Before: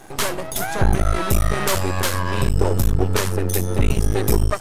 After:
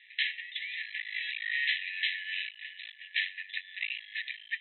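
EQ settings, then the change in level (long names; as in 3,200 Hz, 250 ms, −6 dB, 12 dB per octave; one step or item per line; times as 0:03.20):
linear-phase brick-wall band-pass 1,700–4,100 Hz
high-frequency loss of the air 250 metres
+3.5 dB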